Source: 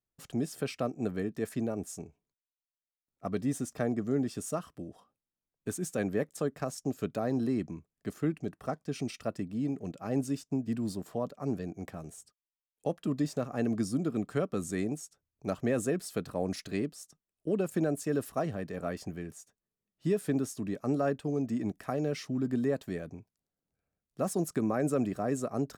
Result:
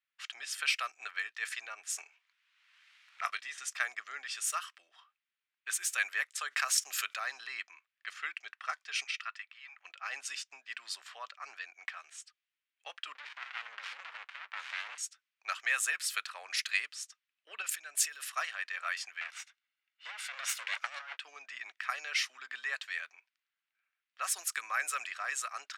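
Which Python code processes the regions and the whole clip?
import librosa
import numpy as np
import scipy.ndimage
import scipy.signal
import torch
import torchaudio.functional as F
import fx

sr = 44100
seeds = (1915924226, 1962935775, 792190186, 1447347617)

y = fx.chain(x, sr, fx.doubler(ms=23.0, db=-12.5),
    fx.band_squash(depth_pct=100), at=(1.96, 3.58))
y = fx.chain(y, sr, fx.highpass(hz=160.0, slope=12),
    fx.env_flatten(amount_pct=50), at=(6.48, 7.14))
y = fx.chain(y, sr, fx.highpass(hz=940.0, slope=24),
    fx.high_shelf(hz=4100.0, db=-10.5), at=(9.04, 9.85))
y = fx.chain(y, sr, fx.peak_eq(hz=820.0, db=5.0, octaves=1.5),
    fx.over_compress(threshold_db=-32.0, ratio=-1.0),
    fx.running_max(window=65), at=(13.15, 14.98))
y = fx.chain(y, sr, fx.peak_eq(hz=1000.0, db=-6.0, octaves=1.3),
    fx.over_compress(threshold_db=-37.0, ratio=-1.0), at=(17.62, 18.21))
y = fx.chain(y, sr, fx.lower_of_two(delay_ms=1.4),
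    fx.high_shelf(hz=9000.0, db=-3.5),
    fx.over_compress(threshold_db=-35.0, ratio=-0.5), at=(19.21, 21.17))
y = scipy.signal.sosfilt(scipy.signal.butter(4, 1300.0, 'highpass', fs=sr, output='sos'), y)
y = fx.env_lowpass(y, sr, base_hz=2800.0, full_db=-40.0)
y = fx.peak_eq(y, sr, hz=2500.0, db=8.0, octaves=1.5)
y = y * librosa.db_to_amplitude(7.0)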